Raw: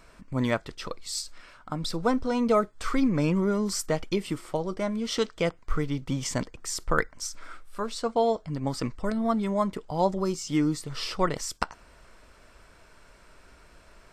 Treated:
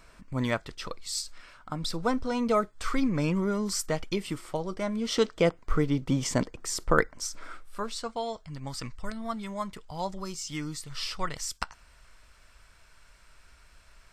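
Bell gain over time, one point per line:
bell 360 Hz 2.7 oct
4.8 s -3.5 dB
5.31 s +4 dB
7.4 s +4 dB
7.81 s -3 dB
8.22 s -13 dB

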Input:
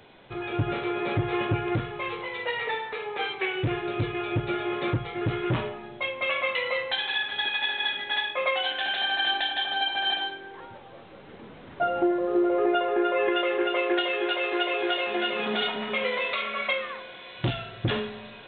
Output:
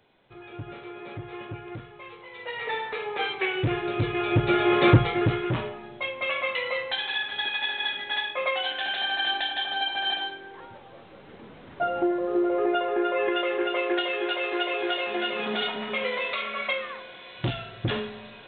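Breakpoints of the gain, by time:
2.23 s -11.5 dB
2.8 s +1.5 dB
3.99 s +1.5 dB
4.99 s +11 dB
5.48 s -1 dB

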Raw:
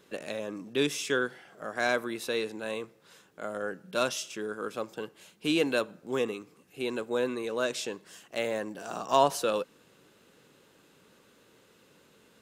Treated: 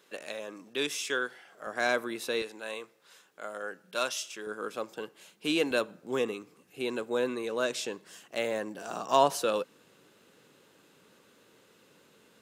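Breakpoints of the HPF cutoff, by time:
HPF 6 dB/oct
640 Hz
from 1.67 s 180 Hz
from 2.42 s 740 Hz
from 4.47 s 260 Hz
from 5.71 s 120 Hz

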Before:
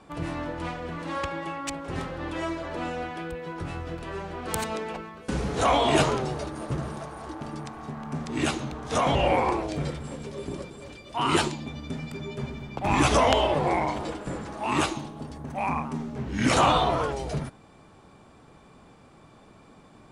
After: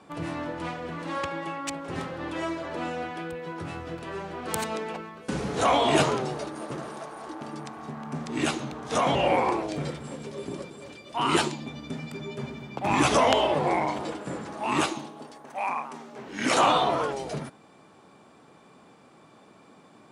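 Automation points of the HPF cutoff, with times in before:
6.07 s 120 Hz
6.92 s 300 Hz
7.87 s 140 Hz
14.79 s 140 Hz
15.41 s 510 Hz
16.05 s 510 Hz
16.87 s 180 Hz

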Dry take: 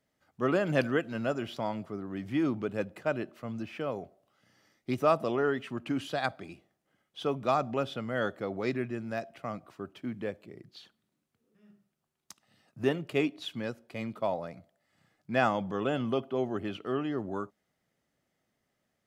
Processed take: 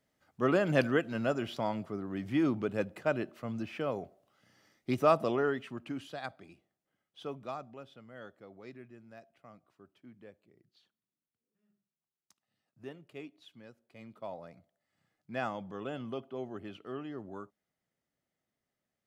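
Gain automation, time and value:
5.27 s 0 dB
6.14 s -9.5 dB
7.33 s -9.5 dB
7.77 s -17.5 dB
13.7 s -17.5 dB
14.48 s -9 dB

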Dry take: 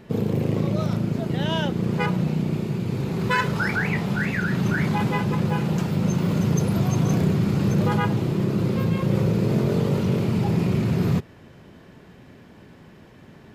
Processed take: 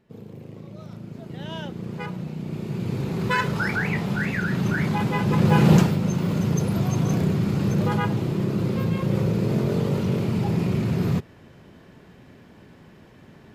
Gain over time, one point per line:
0.65 s -17.5 dB
1.56 s -9 dB
2.35 s -9 dB
2.85 s -1 dB
5.13 s -1 dB
5.75 s +10 dB
5.99 s -1.5 dB

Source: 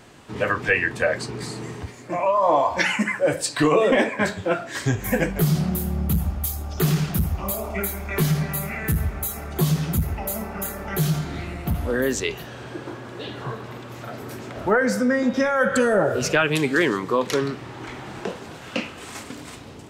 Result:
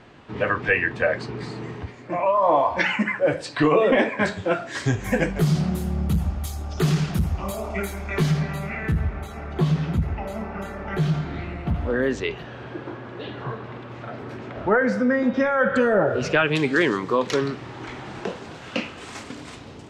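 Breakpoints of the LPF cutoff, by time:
3.92 s 3400 Hz
4.38 s 7000 Hz
8 s 7000 Hz
9 s 3000 Hz
16.08 s 3000 Hz
16.83 s 6600 Hz

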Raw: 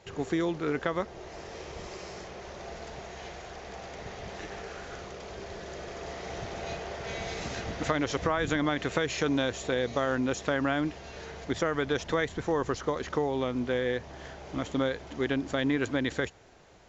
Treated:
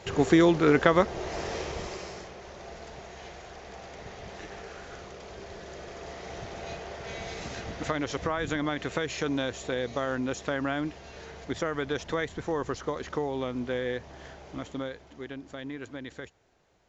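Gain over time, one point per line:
1.51 s +9 dB
2.37 s -2 dB
14.33 s -2 dB
15.28 s -11 dB

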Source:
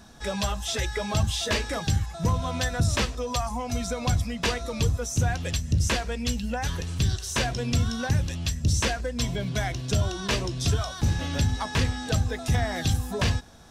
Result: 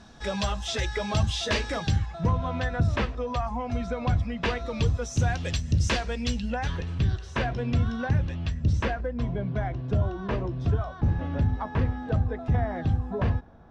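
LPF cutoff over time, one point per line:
1.75 s 5500 Hz
2.35 s 2200 Hz
4.23 s 2200 Hz
5.26 s 5500 Hz
6.23 s 5500 Hz
7.06 s 2100 Hz
8.74 s 2100 Hz
9.25 s 1200 Hz

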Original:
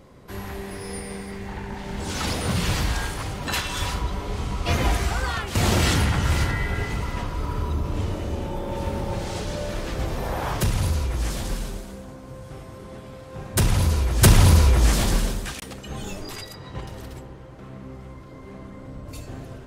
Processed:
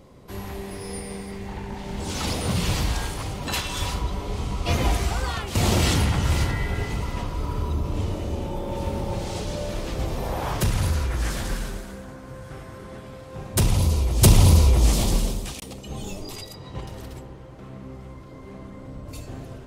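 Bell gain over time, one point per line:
bell 1600 Hz 0.74 oct
10.36 s -5.5 dB
11.01 s +6 dB
12.76 s +6 dB
13.5 s -3 dB
13.81 s -12.5 dB
16.34 s -12.5 dB
16.95 s -2.5 dB

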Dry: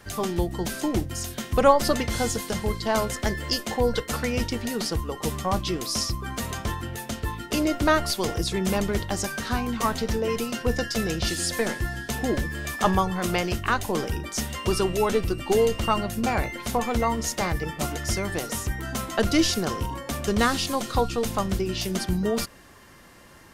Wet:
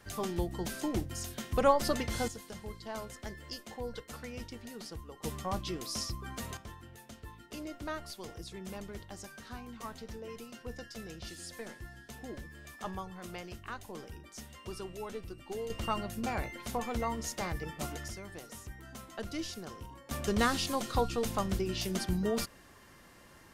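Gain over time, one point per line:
-8 dB
from 2.28 s -17 dB
from 5.24 s -10 dB
from 6.57 s -18.5 dB
from 15.7 s -10 dB
from 18.08 s -17.5 dB
from 20.11 s -6.5 dB

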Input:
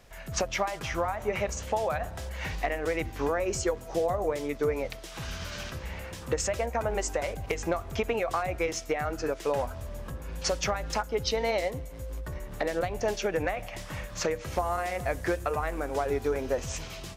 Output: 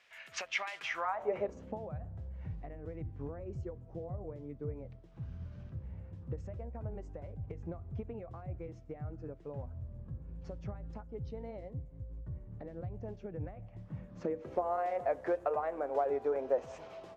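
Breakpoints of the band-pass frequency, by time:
band-pass, Q 1.6
0.88 s 2400 Hz
1.37 s 450 Hz
1.99 s 110 Hz
13.74 s 110 Hz
14.79 s 620 Hz

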